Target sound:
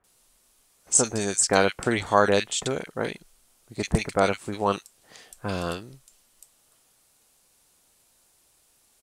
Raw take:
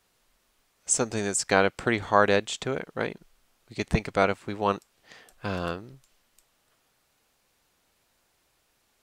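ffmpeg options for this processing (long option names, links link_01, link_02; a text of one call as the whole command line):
ffmpeg -i in.wav -filter_complex "[0:a]acrossover=split=7100[link_01][link_02];[link_02]acompressor=threshold=-41dB:ratio=4:attack=1:release=60[link_03];[link_01][link_03]amix=inputs=2:normalize=0,equalizer=frequency=9500:width=0.8:gain=11.5,acrossover=split=1800[link_04][link_05];[link_05]adelay=40[link_06];[link_04][link_06]amix=inputs=2:normalize=0,volume=1.5dB" out.wav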